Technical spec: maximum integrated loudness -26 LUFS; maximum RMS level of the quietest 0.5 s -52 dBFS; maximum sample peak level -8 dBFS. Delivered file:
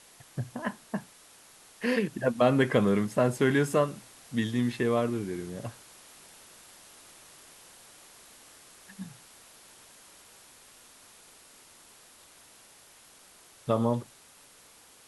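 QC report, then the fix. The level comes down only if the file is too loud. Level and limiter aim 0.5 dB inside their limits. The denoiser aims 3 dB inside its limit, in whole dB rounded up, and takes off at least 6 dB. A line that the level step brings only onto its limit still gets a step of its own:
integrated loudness -28.5 LUFS: OK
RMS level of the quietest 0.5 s -56 dBFS: OK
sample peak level -10.5 dBFS: OK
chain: none

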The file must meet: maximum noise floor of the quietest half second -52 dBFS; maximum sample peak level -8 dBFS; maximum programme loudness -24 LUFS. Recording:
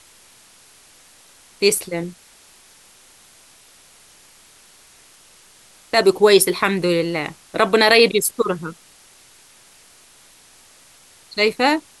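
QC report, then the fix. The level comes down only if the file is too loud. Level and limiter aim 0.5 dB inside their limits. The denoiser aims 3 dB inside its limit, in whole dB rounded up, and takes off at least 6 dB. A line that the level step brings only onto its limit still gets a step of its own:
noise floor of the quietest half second -50 dBFS: fail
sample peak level -1.5 dBFS: fail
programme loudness -17.5 LUFS: fail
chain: gain -7 dB

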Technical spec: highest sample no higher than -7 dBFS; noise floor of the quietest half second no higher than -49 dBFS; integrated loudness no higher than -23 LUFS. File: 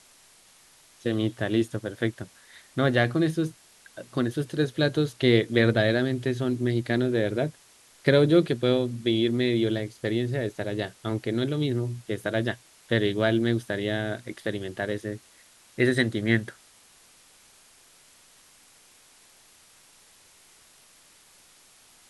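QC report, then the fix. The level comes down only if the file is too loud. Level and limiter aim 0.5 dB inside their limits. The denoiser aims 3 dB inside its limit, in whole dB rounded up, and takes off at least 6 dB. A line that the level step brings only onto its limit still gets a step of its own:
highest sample -6.0 dBFS: fail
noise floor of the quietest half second -56 dBFS: OK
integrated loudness -26.0 LUFS: OK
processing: limiter -7.5 dBFS

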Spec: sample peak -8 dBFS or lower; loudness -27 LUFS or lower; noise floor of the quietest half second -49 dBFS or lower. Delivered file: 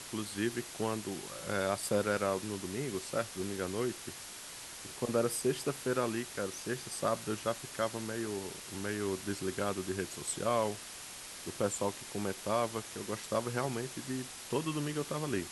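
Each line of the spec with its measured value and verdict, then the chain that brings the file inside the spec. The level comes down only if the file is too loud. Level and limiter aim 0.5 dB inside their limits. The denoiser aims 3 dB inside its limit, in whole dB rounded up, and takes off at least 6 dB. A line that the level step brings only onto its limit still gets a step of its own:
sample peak -17.5 dBFS: OK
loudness -36.0 LUFS: OK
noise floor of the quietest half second -47 dBFS: fail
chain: denoiser 6 dB, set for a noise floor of -47 dBFS

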